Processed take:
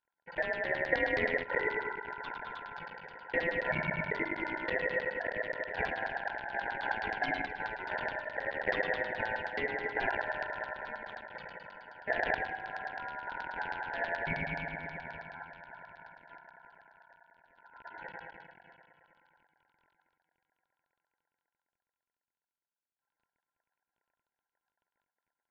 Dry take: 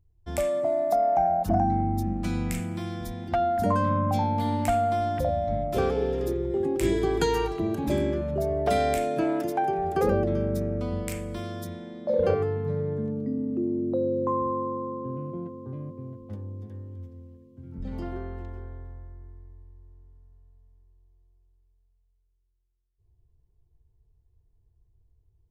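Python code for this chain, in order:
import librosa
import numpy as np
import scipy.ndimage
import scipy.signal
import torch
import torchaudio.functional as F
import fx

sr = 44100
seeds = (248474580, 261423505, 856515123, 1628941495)

y = fx.cycle_switch(x, sr, every=3, mode='muted')
y = fx.filter_lfo_lowpass(y, sr, shape='saw_down', hz=9.4, low_hz=430.0, high_hz=3700.0, q=3.5)
y = scipy.signal.sosfilt(scipy.signal.cheby1(8, 1.0, 160.0, 'highpass', fs=sr, output='sos'), y)
y = y * np.sin(2.0 * np.pi * 1200.0 * np.arange(len(y)) / sr)
y = scipy.signal.sosfilt(scipy.signal.butter(2, 4900.0, 'lowpass', fs=sr, output='sos'), y)
y = y + 10.0 ** (-23.0 / 20.0) * np.pad(y, (int(259 * sr / 1000.0), 0))[:len(y)]
y = F.gain(torch.from_numpy(y), -7.5).numpy()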